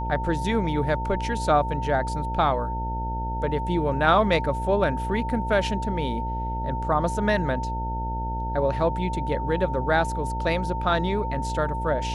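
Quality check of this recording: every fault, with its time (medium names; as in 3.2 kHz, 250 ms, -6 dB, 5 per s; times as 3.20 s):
buzz 60 Hz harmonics 15 -30 dBFS
whine 900 Hz -30 dBFS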